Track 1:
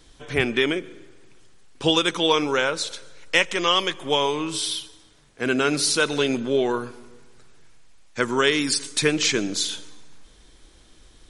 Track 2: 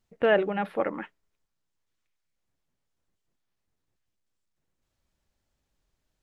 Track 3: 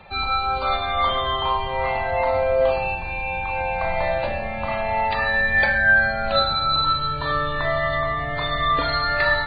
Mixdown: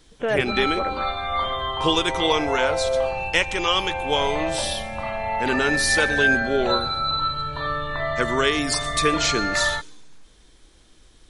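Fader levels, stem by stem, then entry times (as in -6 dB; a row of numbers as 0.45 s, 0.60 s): -1.5 dB, -2.0 dB, -3.5 dB; 0.00 s, 0.00 s, 0.35 s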